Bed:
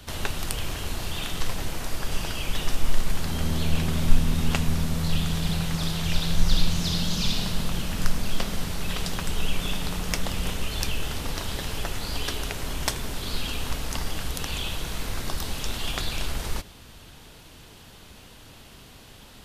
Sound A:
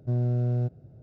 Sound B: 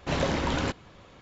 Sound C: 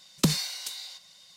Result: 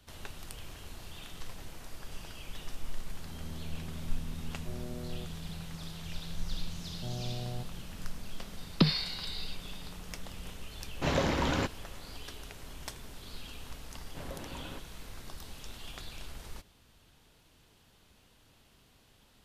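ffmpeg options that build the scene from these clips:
ffmpeg -i bed.wav -i cue0.wav -i cue1.wav -i cue2.wav -filter_complex "[1:a]asplit=2[link_01][link_02];[2:a]asplit=2[link_03][link_04];[0:a]volume=-15.5dB[link_05];[link_01]highpass=frequency=230:width=0.5412,highpass=frequency=230:width=1.3066[link_06];[link_02]lowpass=frequency=810:width_type=q:width=10[link_07];[3:a]aresample=11025,aresample=44100[link_08];[link_04]lowpass=2100[link_09];[link_06]atrim=end=1.02,asetpts=PTS-STARTPTS,volume=-10dB,afade=type=in:duration=0.004:curve=hsin,afade=type=out:start_time=1.016:duration=0.004:curve=hsin,adelay=4580[link_10];[link_07]atrim=end=1.02,asetpts=PTS-STARTPTS,volume=-14.5dB,afade=type=in:duration=0.004:curve=hsin,afade=type=out:start_time=1.016:duration=0.004:curve=hsin,adelay=6950[link_11];[link_08]atrim=end=1.36,asetpts=PTS-STARTPTS,volume=-1dB,afade=type=in:duration=0.004:curve=hsin,afade=type=out:start_time=1.356:duration=0.004:curve=hsin,adelay=8570[link_12];[link_03]atrim=end=1.21,asetpts=PTS-STARTPTS,volume=-2dB,afade=type=in:duration=0.004:curve=hsin,afade=type=out:start_time=1.206:duration=0.004:curve=hsin,adelay=10950[link_13];[link_09]atrim=end=1.21,asetpts=PTS-STARTPTS,volume=-17dB,afade=type=in:duration=0.004:curve=hsin,afade=type=out:start_time=1.206:duration=0.004:curve=hsin,adelay=14080[link_14];[link_05][link_10][link_11][link_12][link_13][link_14]amix=inputs=6:normalize=0" out.wav

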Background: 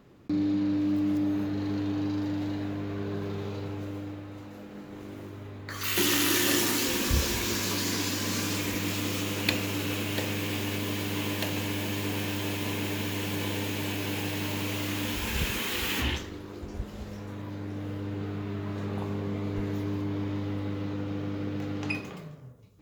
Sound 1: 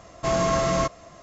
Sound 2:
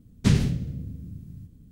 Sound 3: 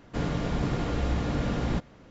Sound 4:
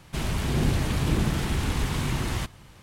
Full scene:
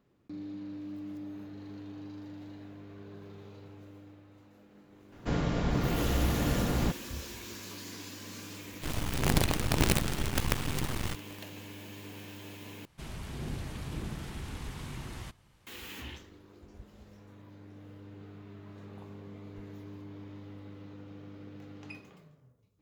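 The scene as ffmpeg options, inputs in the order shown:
ffmpeg -i bed.wav -i cue0.wav -i cue1.wav -i cue2.wav -i cue3.wav -filter_complex "[4:a]asplit=2[link_01][link_02];[0:a]volume=-14.5dB[link_03];[link_01]acrusher=bits=4:dc=4:mix=0:aa=0.000001[link_04];[link_03]asplit=2[link_05][link_06];[link_05]atrim=end=12.854[link_07];[link_02]atrim=end=2.82,asetpts=PTS-STARTPTS,volume=-14dB[link_08];[link_06]atrim=start=15.666[link_09];[3:a]atrim=end=2.1,asetpts=PTS-STARTPTS,volume=-1dB,afade=type=in:duration=0.004:curve=hsin,afade=type=out:start_time=2.096:duration=0.004:curve=hsin,adelay=5120[link_10];[link_04]atrim=end=2.82,asetpts=PTS-STARTPTS,volume=-2.5dB,afade=type=in:duration=0.004:curve=hsin,afade=type=out:start_time=2.816:duration=0.004:curve=hsin,adelay=8690[link_11];[link_07][link_08]acrossfade=duration=0.004:curve1=hsin:curve2=hsin[link_12];[link_12][link_09]acrossfade=duration=0.004:curve1=hsin:curve2=hsin[link_13];[link_13][link_10][link_11]amix=inputs=3:normalize=0" out.wav

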